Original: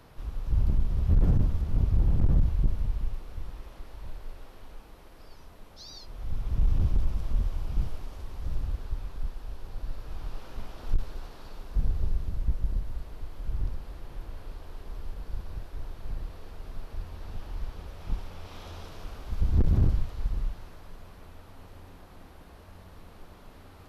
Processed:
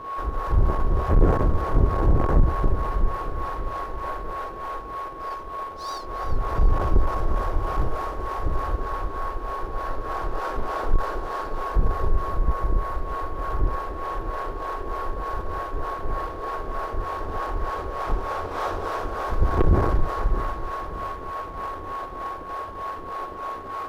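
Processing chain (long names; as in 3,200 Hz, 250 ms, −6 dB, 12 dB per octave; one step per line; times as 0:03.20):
flat-topped bell 770 Hz +15.5 dB 2.9 octaves
leveller curve on the samples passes 2
steady tone 1,100 Hz −27 dBFS
two-band tremolo in antiphase 3.3 Hz, depth 70%, crossover 440 Hz
on a send: echo with a time of its own for lows and highs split 400 Hz, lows 622 ms, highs 347 ms, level −15 dB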